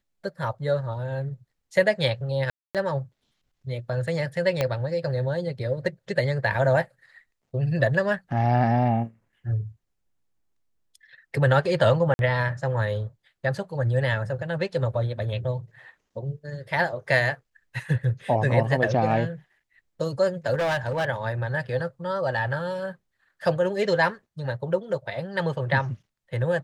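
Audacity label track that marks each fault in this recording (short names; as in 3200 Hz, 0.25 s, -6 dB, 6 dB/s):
2.500000	2.750000	gap 0.247 s
4.610000	4.610000	pop -10 dBFS
12.140000	12.190000	gap 51 ms
20.530000	21.050000	clipped -21.5 dBFS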